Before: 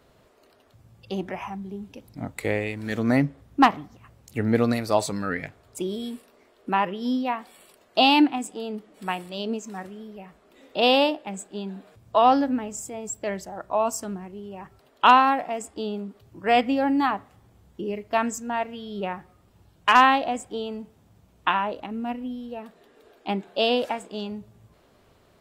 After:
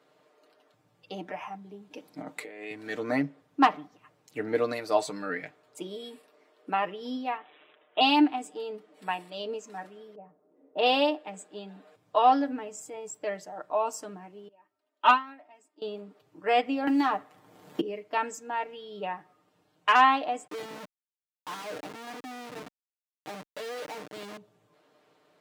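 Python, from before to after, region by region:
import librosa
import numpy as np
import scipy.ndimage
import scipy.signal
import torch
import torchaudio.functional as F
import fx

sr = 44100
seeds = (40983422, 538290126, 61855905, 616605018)

y = fx.chain(x, sr, fx.highpass(hz=150.0, slope=24),
    fx.over_compress(threshold_db=-35.0, ratio=-1.0), at=(1.91, 2.71))
y = fx.chain(y, sr, fx.low_shelf(hz=220.0, db=-8.5),
    fx.resample_bad(factor=6, down='none', up='filtered'), at=(7.37, 8.01))
y = fx.chain(y, sr, fx.lowpass(hz=3700.0, slope=12),
    fx.env_lowpass(base_hz=400.0, full_db=-23.0), at=(10.15, 10.86))
y = fx.chain(y, sr, fx.comb(ms=3.2, depth=0.81),
    fx.upward_expand(threshold_db=-22.0, expansion=2.5), at=(14.48, 15.82))
y = fx.chain(y, sr, fx.leveller(passes=1),
    fx.high_shelf(hz=12000.0, db=9.0),
    fx.band_squash(depth_pct=100), at=(16.87, 17.81))
y = fx.chain(y, sr, fx.harmonic_tremolo(hz=3.1, depth_pct=70, crossover_hz=1500.0),
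    fx.schmitt(flips_db=-40.5), at=(20.47, 24.37))
y = scipy.signal.sosfilt(scipy.signal.butter(2, 280.0, 'highpass', fs=sr, output='sos'), y)
y = fx.high_shelf(y, sr, hz=7800.0, db=-9.5)
y = y + 0.65 * np.pad(y, (int(6.6 * sr / 1000.0), 0))[:len(y)]
y = y * librosa.db_to_amplitude(-5.0)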